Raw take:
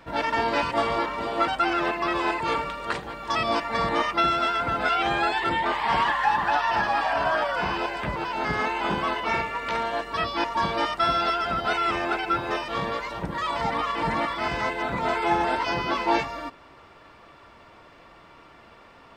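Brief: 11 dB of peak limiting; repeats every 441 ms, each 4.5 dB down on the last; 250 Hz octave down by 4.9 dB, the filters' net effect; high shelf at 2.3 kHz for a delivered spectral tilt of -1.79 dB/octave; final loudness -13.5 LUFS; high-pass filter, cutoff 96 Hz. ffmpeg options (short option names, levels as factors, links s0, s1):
-af "highpass=96,equalizer=f=250:t=o:g=-7.5,highshelf=f=2300:g=-5,alimiter=limit=0.0708:level=0:latency=1,aecho=1:1:441|882|1323|1764|2205|2646|3087|3528|3969:0.596|0.357|0.214|0.129|0.0772|0.0463|0.0278|0.0167|0.01,volume=6.31"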